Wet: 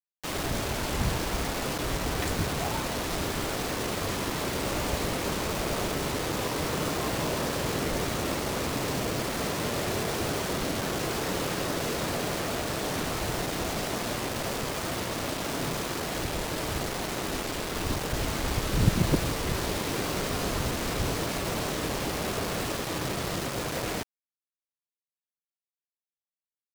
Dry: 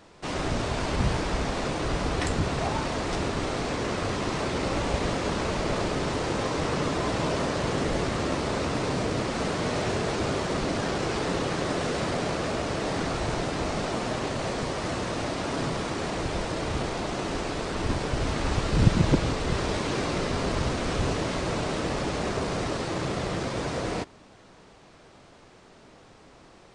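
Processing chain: bit crusher 5-bit; vibrato 0.9 Hz 73 cents; trim -3 dB

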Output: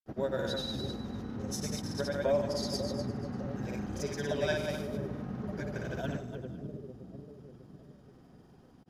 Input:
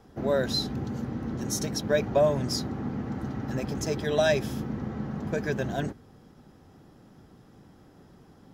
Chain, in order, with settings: two-band feedback delay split 520 Hz, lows 548 ms, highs 116 ms, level -4 dB; speed mistake 25 fps video run at 24 fps; granulator, pitch spread up and down by 0 st; trim -6 dB

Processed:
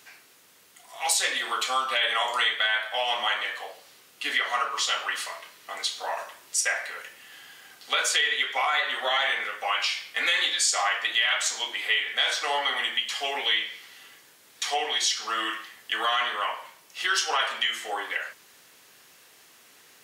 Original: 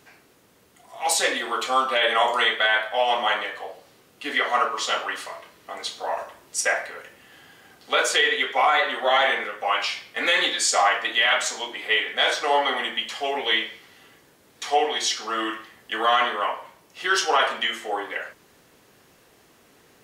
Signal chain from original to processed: high-pass 88 Hz; tilt shelf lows -8 dB, about 910 Hz; compression 2:1, threshold -24 dBFS, peak gain reduction 7.5 dB; trim -2 dB

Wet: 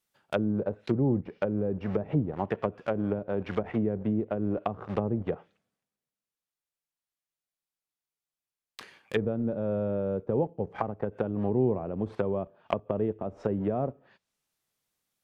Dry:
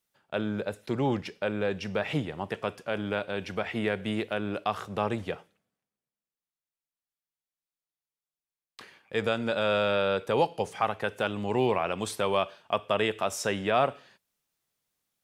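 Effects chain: in parallel at -4 dB: bit crusher 6-bit; on the sum: low-pass that closes with the level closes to 350 Hz, closed at -22 dBFS

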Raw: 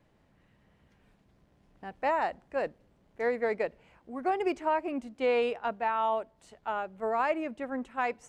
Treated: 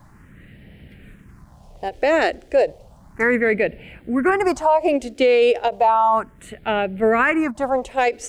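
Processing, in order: phase shifter stages 4, 0.33 Hz, lowest notch 160–1100 Hz; loudness maximiser +28.5 dB; endings held to a fixed fall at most 390 dB/s; trim -7.5 dB

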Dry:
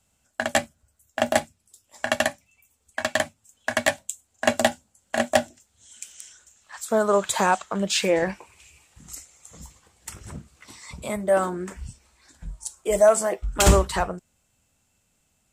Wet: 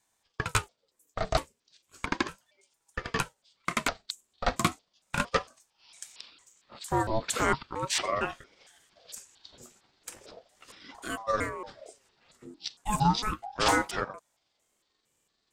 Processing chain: pitch shift switched off and on -10.5 st, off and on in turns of 228 ms; bass shelf 190 Hz -8.5 dB; ring modulator with a swept carrier 600 Hz, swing 50%, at 0.36 Hz; trim -2 dB

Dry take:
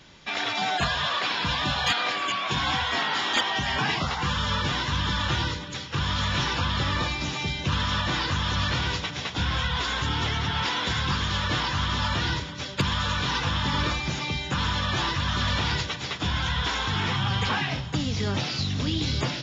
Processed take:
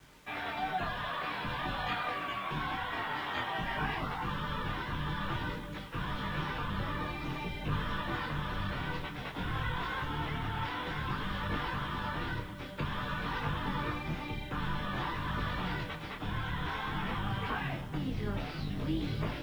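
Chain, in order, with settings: octave divider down 2 oct, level +2 dB; low-pass 2.1 kHz 12 dB/octave; bass shelf 83 Hz -9.5 dB; in parallel at +0.5 dB: peak limiter -23 dBFS, peak gain reduction 9.5 dB; on the sum: word length cut 8-bit, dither none; on a send at -13 dB: reverberation RT60 0.70 s, pre-delay 7 ms; on the sum: detune thickener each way 18 cents; trim -8.5 dB

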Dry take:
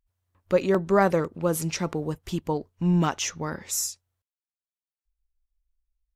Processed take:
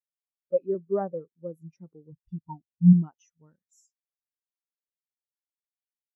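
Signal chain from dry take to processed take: 2.12–2.93 s: comb 1.1 ms, depth 95%; spectral contrast expander 2.5:1

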